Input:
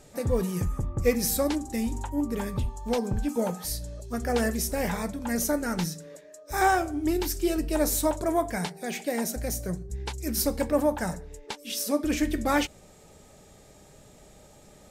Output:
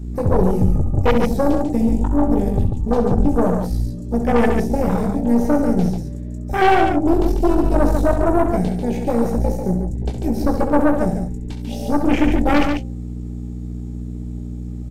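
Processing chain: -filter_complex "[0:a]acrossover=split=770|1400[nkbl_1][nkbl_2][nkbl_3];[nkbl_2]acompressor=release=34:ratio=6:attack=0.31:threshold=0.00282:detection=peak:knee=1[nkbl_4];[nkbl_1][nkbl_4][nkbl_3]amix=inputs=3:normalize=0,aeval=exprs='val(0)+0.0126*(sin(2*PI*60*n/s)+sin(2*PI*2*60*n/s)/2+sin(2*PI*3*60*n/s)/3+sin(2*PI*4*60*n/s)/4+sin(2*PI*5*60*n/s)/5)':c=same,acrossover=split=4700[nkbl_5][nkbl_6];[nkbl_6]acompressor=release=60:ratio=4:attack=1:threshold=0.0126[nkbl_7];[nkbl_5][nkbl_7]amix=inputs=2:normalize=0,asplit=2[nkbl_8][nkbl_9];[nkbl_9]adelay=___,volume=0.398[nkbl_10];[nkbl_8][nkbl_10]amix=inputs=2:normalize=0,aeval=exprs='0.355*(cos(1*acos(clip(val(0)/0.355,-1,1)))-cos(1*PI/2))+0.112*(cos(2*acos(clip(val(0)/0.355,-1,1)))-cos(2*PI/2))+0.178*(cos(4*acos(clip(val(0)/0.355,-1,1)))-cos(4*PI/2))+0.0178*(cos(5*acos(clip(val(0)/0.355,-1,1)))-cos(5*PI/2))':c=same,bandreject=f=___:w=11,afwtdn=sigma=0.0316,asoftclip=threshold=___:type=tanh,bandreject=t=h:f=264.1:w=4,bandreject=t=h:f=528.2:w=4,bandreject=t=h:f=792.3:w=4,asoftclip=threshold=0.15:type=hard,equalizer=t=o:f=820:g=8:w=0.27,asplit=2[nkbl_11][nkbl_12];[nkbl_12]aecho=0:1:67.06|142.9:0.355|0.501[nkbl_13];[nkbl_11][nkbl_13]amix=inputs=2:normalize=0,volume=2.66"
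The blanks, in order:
21, 850, 0.178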